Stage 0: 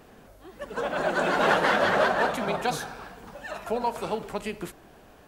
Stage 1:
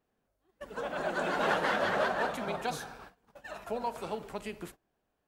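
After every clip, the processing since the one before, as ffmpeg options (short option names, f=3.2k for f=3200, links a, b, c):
-af "agate=range=-21dB:threshold=-41dB:ratio=16:detection=peak,volume=-7dB"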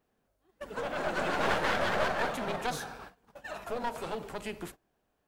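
-af "aeval=exprs='clip(val(0),-1,0.0126)':c=same,volume=3dB"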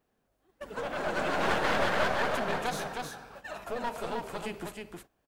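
-af "aecho=1:1:313:0.631"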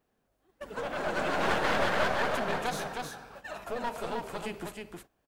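-af anull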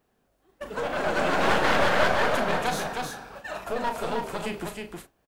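-filter_complex "[0:a]asplit=2[a][b];[b]adelay=36,volume=-8.5dB[c];[a][c]amix=inputs=2:normalize=0,volume=5dB"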